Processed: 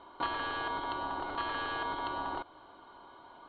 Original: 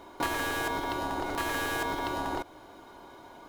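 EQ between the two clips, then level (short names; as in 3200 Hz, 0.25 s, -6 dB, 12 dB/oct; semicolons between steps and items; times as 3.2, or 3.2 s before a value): rippled Chebyshev low-pass 4400 Hz, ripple 9 dB; 0.0 dB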